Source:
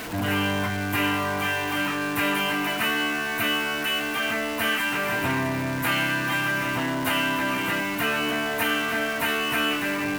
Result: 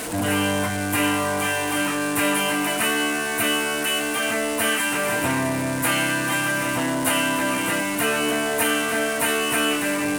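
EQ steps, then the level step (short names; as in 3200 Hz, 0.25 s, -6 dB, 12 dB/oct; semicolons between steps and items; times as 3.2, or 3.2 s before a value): bell 450 Hz +7 dB 1.4 oct; bell 9100 Hz +14.5 dB 0.93 oct; notch 400 Hz, Q 12; 0.0 dB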